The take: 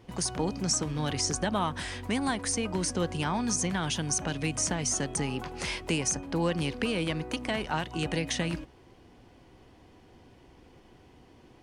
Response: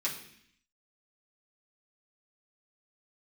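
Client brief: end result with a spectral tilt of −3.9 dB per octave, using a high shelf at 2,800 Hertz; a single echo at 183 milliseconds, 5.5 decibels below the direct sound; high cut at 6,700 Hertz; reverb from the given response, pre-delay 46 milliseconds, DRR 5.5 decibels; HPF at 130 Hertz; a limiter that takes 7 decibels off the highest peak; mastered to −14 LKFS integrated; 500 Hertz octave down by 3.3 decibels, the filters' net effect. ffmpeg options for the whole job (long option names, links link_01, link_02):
-filter_complex "[0:a]highpass=130,lowpass=6700,equalizer=frequency=500:width_type=o:gain=-4,highshelf=frequency=2800:gain=-3,alimiter=limit=-24dB:level=0:latency=1,aecho=1:1:183:0.531,asplit=2[link_01][link_02];[1:a]atrim=start_sample=2205,adelay=46[link_03];[link_02][link_03]afir=irnorm=-1:irlink=0,volume=-10.5dB[link_04];[link_01][link_04]amix=inputs=2:normalize=0,volume=18.5dB"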